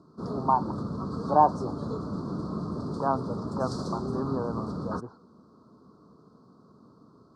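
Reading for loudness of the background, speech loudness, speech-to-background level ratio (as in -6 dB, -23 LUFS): -34.0 LUFS, -29.0 LUFS, 5.0 dB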